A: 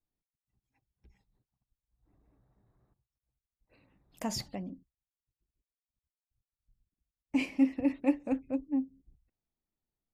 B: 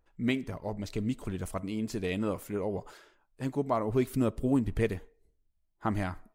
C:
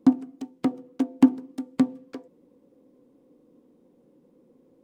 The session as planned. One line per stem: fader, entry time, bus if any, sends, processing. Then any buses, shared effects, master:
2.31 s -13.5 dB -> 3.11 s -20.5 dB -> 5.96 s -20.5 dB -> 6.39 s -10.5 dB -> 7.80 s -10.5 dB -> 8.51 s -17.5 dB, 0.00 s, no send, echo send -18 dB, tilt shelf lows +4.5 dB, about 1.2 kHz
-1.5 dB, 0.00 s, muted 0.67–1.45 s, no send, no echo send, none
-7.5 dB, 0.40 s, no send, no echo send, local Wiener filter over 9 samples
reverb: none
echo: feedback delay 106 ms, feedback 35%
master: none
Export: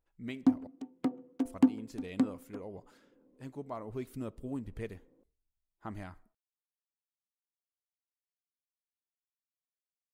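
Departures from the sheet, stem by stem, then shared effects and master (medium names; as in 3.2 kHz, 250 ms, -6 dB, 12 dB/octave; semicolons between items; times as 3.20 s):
stem A: muted; stem B -1.5 dB -> -12.0 dB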